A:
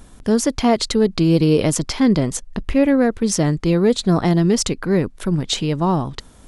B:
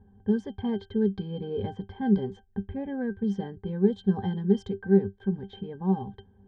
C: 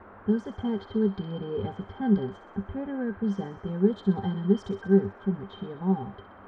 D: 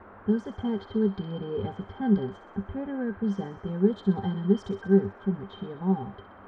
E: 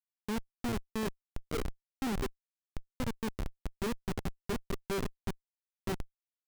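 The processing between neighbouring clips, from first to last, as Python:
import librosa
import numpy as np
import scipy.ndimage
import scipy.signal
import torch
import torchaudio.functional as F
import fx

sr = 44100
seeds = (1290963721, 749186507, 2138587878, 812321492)

y1 = fx.octave_resonator(x, sr, note='G', decay_s=0.13)
y1 = fx.env_lowpass(y1, sr, base_hz=1300.0, full_db=-19.0)
y2 = fx.dmg_noise_band(y1, sr, seeds[0], low_hz=200.0, high_hz=1400.0, level_db=-50.0)
y2 = fx.echo_wet_highpass(y2, sr, ms=63, feedback_pct=71, hz=1700.0, wet_db=-9.0)
y3 = y2
y4 = scipy.signal.sosfilt(scipy.signal.butter(4, 250.0, 'highpass', fs=sr, output='sos'), y3)
y4 = fx.schmitt(y4, sr, flips_db=-28.5)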